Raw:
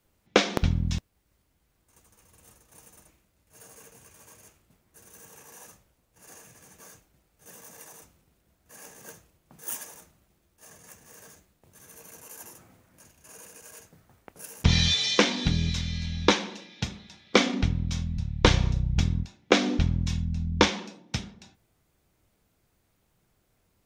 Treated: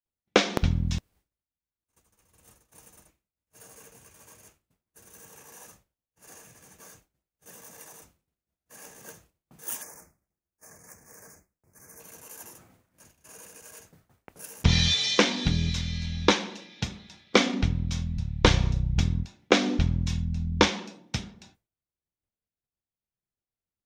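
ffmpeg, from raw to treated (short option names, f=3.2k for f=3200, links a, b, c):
-filter_complex "[0:a]asettb=1/sr,asplit=3[a][b][c];[a]atrim=end=9.824[d];[b]atrim=start=9.82:end=12,asetpts=PTS-STARTPTS,afade=t=in:d=0.004:c=qsin,afade=t=out:st=2.176:d=0.004:c=qsin,asuperstop=centerf=3400:order=8:qfactor=1.3[e];[c]atrim=start=11.996[f];[d][e]acrossfade=d=0.004:c1=hsin:c2=qsin[g];[g][f]acrossfade=d=0.004:c1=qsin:c2=hsin,agate=range=-33dB:threshold=-53dB:ratio=3:detection=peak"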